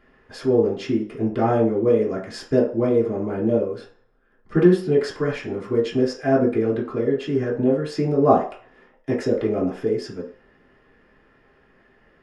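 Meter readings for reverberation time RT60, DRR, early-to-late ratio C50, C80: 0.45 s, -6.5 dB, 7.5 dB, 12.5 dB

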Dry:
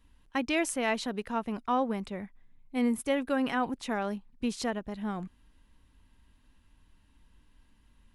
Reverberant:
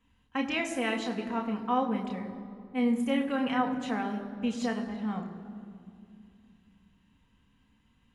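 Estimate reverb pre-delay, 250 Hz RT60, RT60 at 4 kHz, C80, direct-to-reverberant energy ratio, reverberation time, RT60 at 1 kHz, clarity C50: 3 ms, 3.5 s, 1.5 s, 10.0 dB, 2.0 dB, 2.4 s, 2.2 s, 9.0 dB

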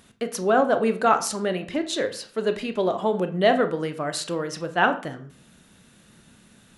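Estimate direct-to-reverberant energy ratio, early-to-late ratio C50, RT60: 8.0 dB, 13.0 dB, 0.45 s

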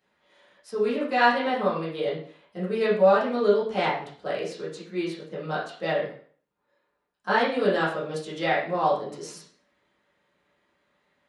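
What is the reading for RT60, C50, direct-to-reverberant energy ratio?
0.50 s, 5.0 dB, -9.5 dB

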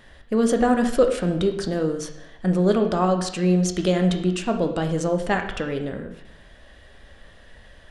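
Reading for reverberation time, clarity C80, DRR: 0.80 s, 11.0 dB, 5.0 dB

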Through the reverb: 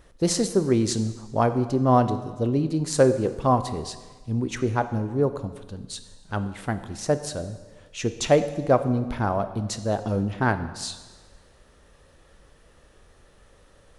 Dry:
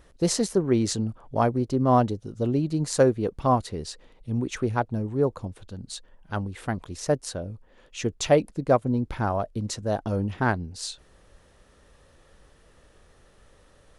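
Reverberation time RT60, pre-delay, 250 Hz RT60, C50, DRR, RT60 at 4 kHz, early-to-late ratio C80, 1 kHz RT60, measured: 1.4 s, 11 ms, 1.3 s, 12.0 dB, 10.0 dB, 1.3 s, 13.5 dB, 1.4 s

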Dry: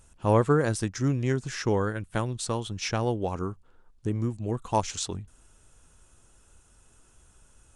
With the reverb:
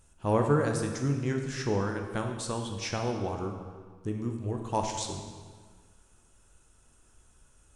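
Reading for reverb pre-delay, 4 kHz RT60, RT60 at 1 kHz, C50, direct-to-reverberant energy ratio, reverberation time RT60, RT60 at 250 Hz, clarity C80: 12 ms, 1.3 s, 1.6 s, 5.5 dB, 3.0 dB, 1.6 s, 1.6 s, 6.5 dB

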